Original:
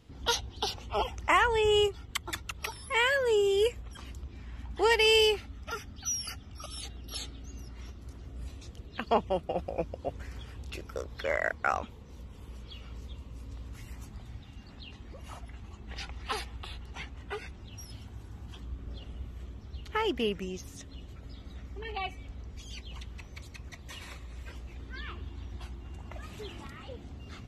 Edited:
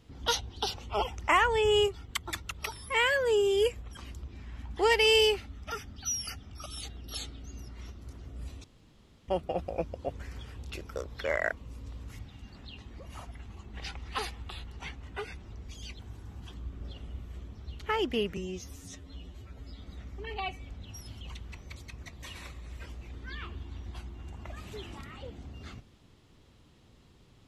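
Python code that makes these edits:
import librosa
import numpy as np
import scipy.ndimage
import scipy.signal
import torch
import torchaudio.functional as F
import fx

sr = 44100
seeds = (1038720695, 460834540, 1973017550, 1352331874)

y = fx.edit(x, sr, fx.room_tone_fill(start_s=8.64, length_s=0.64),
    fx.cut(start_s=11.57, length_s=1.65),
    fx.cut(start_s=13.84, length_s=0.49),
    fx.swap(start_s=17.66, length_s=0.39, other_s=22.4, other_length_s=0.47),
    fx.stretch_span(start_s=20.43, length_s=0.96, factor=1.5), tone=tone)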